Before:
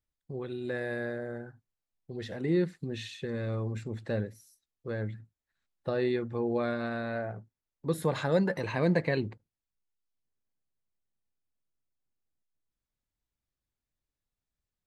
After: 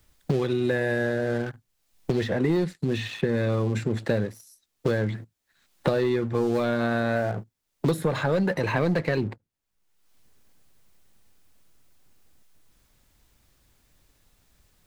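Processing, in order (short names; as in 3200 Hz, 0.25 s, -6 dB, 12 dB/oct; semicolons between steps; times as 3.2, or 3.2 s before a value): sample leveller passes 2; three-band squash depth 100%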